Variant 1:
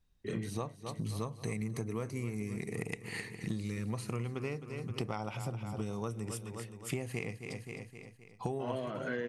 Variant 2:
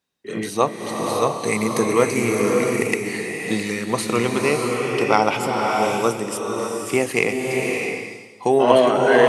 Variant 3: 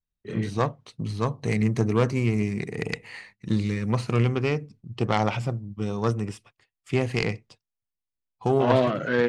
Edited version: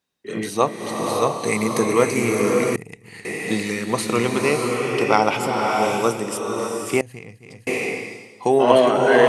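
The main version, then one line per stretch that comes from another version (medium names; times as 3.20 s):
2
2.76–3.25 s: from 1
7.01–7.67 s: from 1
not used: 3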